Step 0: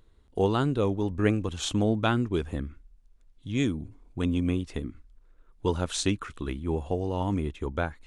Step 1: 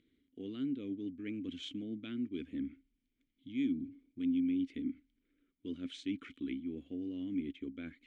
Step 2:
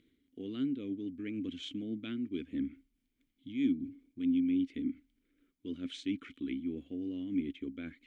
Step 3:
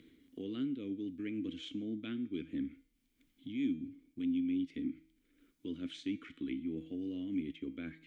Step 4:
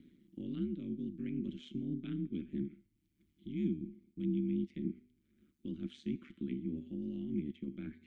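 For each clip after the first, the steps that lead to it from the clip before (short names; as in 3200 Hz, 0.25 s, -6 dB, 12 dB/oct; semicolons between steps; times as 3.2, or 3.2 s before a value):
reverse; compressor 6:1, threshold -34 dBFS, peak gain reduction 15.5 dB; reverse; vowel filter i; gain +8 dB
noise-modulated level, depth 55%; gain +5 dB
resonator 160 Hz, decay 0.54 s, harmonics all, mix 60%; three-band squash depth 40%; gain +5 dB
ring modulator 73 Hz; resonant low shelf 350 Hz +6.5 dB, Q 3; gain -5 dB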